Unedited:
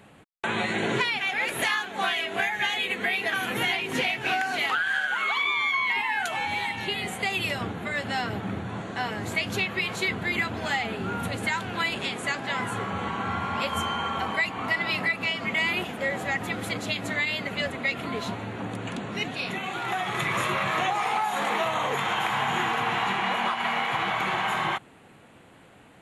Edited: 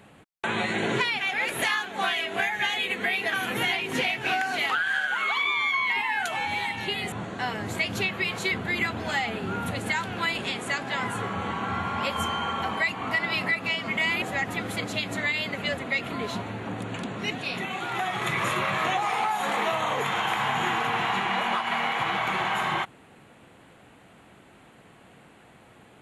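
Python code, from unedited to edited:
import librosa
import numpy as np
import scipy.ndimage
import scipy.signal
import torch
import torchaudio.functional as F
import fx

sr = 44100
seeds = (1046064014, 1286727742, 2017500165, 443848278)

y = fx.edit(x, sr, fx.cut(start_s=7.12, length_s=1.57),
    fx.cut(start_s=15.79, length_s=0.36), tone=tone)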